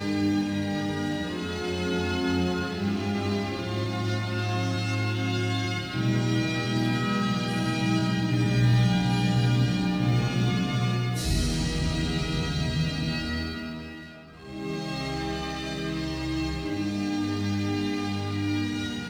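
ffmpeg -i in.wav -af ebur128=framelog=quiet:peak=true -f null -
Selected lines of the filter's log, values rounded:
Integrated loudness:
  I:         -27.2 LUFS
  Threshold: -37.3 LUFS
Loudness range:
  LRA:         6.9 LU
  Threshold: -47.2 LUFS
  LRA low:   -31.2 LUFS
  LRA high:  -24.3 LUFS
True peak:
  Peak:      -11.8 dBFS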